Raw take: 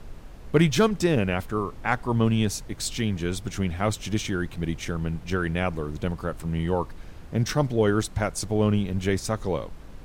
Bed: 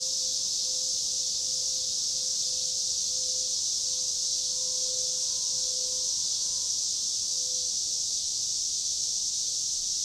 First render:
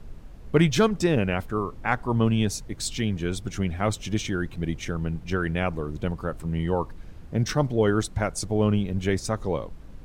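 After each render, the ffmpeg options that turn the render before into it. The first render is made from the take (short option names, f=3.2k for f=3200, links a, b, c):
-af "afftdn=nr=6:nf=-43"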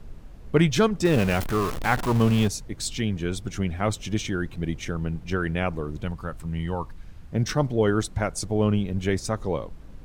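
-filter_complex "[0:a]asettb=1/sr,asplit=3[a][b][c];[a]atrim=end=1.054[d];[b]atrim=start=1.05:end=2.48,asetpts=PTS-STARTPTS,afade=t=in:d=0.004:c=qsin,afade=t=out:st=1.426:d=0.004:c=qsin,aeval=exprs='val(0)+0.5*0.0501*sgn(val(0))':c=same[e];[c]atrim=start=2.476[f];[d][e]acrossfade=d=0.004:c1=hsin:c2=qsin[g];[g][f]acrossfade=d=0.004:c1=qsin:c2=hsin,asettb=1/sr,asplit=3[h][i][j];[h]atrim=end=6.024[k];[i]atrim=start=6.02:end=7.34,asetpts=PTS-STARTPTS,afade=t=in:d=0.004:c=qsin,afade=t=out:st=1.316:d=0.004:c=qsin,equalizer=f=400:w=0.75:g=-7[l];[j]atrim=start=7.336[m];[k][l]acrossfade=d=0.004:c1=hsin:c2=qsin[n];[n][m]acrossfade=d=0.004:c1=qsin:c2=hsin"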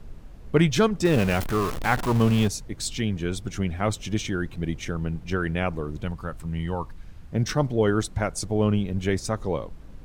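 -af anull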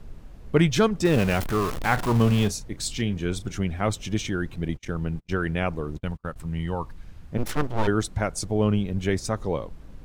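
-filter_complex "[0:a]asettb=1/sr,asplit=3[a][b][c];[a]atrim=end=1.904[d];[b]atrim=start=1.9:end=3.53,asetpts=PTS-STARTPTS,afade=t=in:d=0.004:c=qsin,afade=t=out:st=1.626:d=0.004:c=qsin,asplit=2[e][f];[f]adelay=34,volume=-14dB[g];[e][g]amix=inputs=2:normalize=0,atrim=end_sample=71883[h];[c]atrim=start=3.526[i];[d][h]acrossfade=d=0.004:c1=hsin:c2=qsin[j];[j][i]acrossfade=d=0.004:c1=qsin:c2=hsin,asettb=1/sr,asplit=3[k][l][m];[k]atrim=end=4.684[n];[l]atrim=start=4.68:end=6.36,asetpts=PTS-STARTPTS,afade=t=in:d=0.004:c=qsin,afade=t=out:st=1.676:d=0.004:c=qsin,agate=range=-38dB:threshold=-34dB:ratio=16:release=100:detection=peak[o];[m]atrim=start=6.356[p];[n][o]acrossfade=d=0.004:c1=hsin:c2=qsin[q];[q][p]acrossfade=d=0.004:c1=qsin:c2=hsin,asplit=3[r][s][t];[r]afade=t=out:st=7.37:d=0.02[u];[s]aeval=exprs='abs(val(0))':c=same,afade=t=in:st=7.37:d=0.02,afade=t=out:st=7.86:d=0.02[v];[t]afade=t=in:st=7.86:d=0.02[w];[u][v][w]amix=inputs=3:normalize=0"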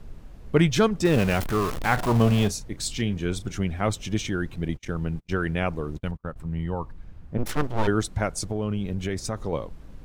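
-filter_complex "[0:a]asettb=1/sr,asplit=3[a][b][c];[a]atrim=end=1.984[d];[b]atrim=start=1.98:end=2.47,asetpts=PTS-STARTPTS,afade=t=in:d=0.004:c=qsin,afade=t=out:st=0.486:d=0.004:c=qsin,equalizer=f=660:w=3.5:g=7[e];[c]atrim=start=2.466[f];[d][e]acrossfade=d=0.004:c1=hsin:c2=qsin[g];[g][f]acrossfade=d=0.004:c1=qsin:c2=hsin,asettb=1/sr,asplit=3[h][i][j];[h]atrim=end=6.114[k];[i]atrim=start=6.11:end=7.46,asetpts=PTS-STARTPTS,afade=t=in:d=0.004:c=qsin,afade=t=out:st=1.346:d=0.004:c=qsin,highshelf=f=2.1k:g=-11[l];[j]atrim=start=7.456[m];[k][l]acrossfade=d=0.004:c1=hsin:c2=qsin[n];[n][m]acrossfade=d=0.004:c1=qsin:c2=hsin,asettb=1/sr,asplit=3[o][p][q];[o]atrim=end=8.364[r];[p]atrim=start=8.36:end=9.53,asetpts=PTS-STARTPTS,afade=t=in:d=0.004:c=qsin,afade=t=out:st=1.166:d=0.004:c=qsin,acompressor=threshold=-23dB:ratio=6:attack=3.2:release=140:knee=1:detection=peak[s];[q]atrim=start=9.526[t];[r][s]acrossfade=d=0.004:c1=hsin:c2=qsin[u];[u][t]acrossfade=d=0.004:c1=qsin:c2=hsin"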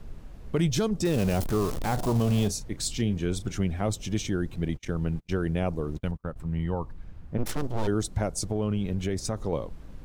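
-filter_complex "[0:a]acrossover=split=880|3800[a][b][c];[a]alimiter=limit=-17.5dB:level=0:latency=1[d];[b]acompressor=threshold=-43dB:ratio=6[e];[d][e][c]amix=inputs=3:normalize=0"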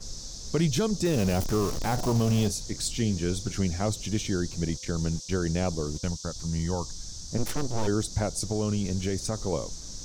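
-filter_complex "[1:a]volume=-13dB[a];[0:a][a]amix=inputs=2:normalize=0"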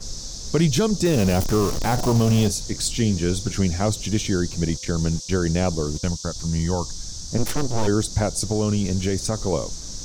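-af "volume=6dB"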